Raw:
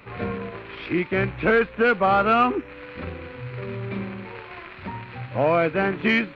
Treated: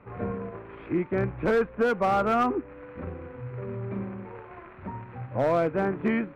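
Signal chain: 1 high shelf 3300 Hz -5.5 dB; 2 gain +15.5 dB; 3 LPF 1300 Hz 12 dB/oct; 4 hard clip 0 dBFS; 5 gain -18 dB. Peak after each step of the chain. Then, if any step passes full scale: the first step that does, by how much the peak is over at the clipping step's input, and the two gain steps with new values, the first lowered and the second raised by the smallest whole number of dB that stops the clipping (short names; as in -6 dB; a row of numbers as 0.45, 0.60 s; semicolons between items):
-9.0, +6.5, +5.5, 0.0, -18.0 dBFS; step 2, 5.5 dB; step 2 +9.5 dB, step 5 -12 dB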